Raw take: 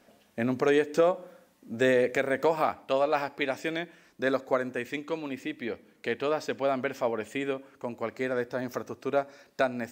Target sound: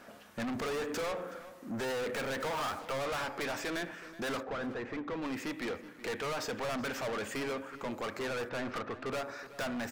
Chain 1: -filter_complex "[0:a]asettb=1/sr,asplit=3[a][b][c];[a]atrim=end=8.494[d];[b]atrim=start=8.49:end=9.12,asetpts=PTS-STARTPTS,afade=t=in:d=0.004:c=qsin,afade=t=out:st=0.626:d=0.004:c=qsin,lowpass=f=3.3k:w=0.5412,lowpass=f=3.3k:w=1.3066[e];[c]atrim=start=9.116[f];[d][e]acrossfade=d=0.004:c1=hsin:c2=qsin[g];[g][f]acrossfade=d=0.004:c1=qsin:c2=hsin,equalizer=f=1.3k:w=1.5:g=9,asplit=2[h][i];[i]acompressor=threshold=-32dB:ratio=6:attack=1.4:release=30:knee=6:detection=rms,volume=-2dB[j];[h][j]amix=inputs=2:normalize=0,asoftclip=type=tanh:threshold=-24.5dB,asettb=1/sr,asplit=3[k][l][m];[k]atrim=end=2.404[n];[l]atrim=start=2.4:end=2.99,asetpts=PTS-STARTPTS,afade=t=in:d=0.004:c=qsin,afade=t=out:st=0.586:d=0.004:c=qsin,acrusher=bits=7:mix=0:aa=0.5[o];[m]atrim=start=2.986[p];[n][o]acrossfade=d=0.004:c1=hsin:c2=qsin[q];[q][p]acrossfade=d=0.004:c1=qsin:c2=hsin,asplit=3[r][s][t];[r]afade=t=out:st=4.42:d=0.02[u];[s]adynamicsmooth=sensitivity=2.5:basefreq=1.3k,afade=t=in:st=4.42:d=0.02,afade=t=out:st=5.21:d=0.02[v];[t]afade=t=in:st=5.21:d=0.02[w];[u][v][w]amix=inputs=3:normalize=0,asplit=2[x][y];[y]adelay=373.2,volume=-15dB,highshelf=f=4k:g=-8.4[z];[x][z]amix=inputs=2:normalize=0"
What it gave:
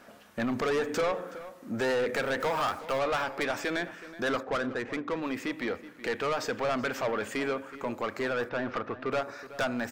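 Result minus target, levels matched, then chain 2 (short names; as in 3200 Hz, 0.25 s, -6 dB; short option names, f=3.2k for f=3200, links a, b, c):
compressor: peak gain reduction +9.5 dB; soft clip: distortion -5 dB
-filter_complex "[0:a]asettb=1/sr,asplit=3[a][b][c];[a]atrim=end=8.494[d];[b]atrim=start=8.49:end=9.12,asetpts=PTS-STARTPTS,afade=t=in:d=0.004:c=qsin,afade=t=out:st=0.626:d=0.004:c=qsin,lowpass=f=3.3k:w=0.5412,lowpass=f=3.3k:w=1.3066[e];[c]atrim=start=9.116[f];[d][e]acrossfade=d=0.004:c1=hsin:c2=qsin[g];[g][f]acrossfade=d=0.004:c1=qsin:c2=hsin,equalizer=f=1.3k:w=1.5:g=9,asplit=2[h][i];[i]acompressor=threshold=-20.5dB:ratio=6:attack=1.4:release=30:knee=6:detection=rms,volume=-2dB[j];[h][j]amix=inputs=2:normalize=0,asoftclip=type=tanh:threshold=-33.5dB,asettb=1/sr,asplit=3[k][l][m];[k]atrim=end=2.404[n];[l]atrim=start=2.4:end=2.99,asetpts=PTS-STARTPTS,afade=t=in:d=0.004:c=qsin,afade=t=out:st=0.586:d=0.004:c=qsin,acrusher=bits=7:mix=0:aa=0.5[o];[m]atrim=start=2.986[p];[n][o]acrossfade=d=0.004:c1=hsin:c2=qsin[q];[q][p]acrossfade=d=0.004:c1=qsin:c2=hsin,asplit=3[r][s][t];[r]afade=t=out:st=4.42:d=0.02[u];[s]adynamicsmooth=sensitivity=2.5:basefreq=1.3k,afade=t=in:st=4.42:d=0.02,afade=t=out:st=5.21:d=0.02[v];[t]afade=t=in:st=5.21:d=0.02[w];[u][v][w]amix=inputs=3:normalize=0,asplit=2[x][y];[y]adelay=373.2,volume=-15dB,highshelf=f=4k:g=-8.4[z];[x][z]amix=inputs=2:normalize=0"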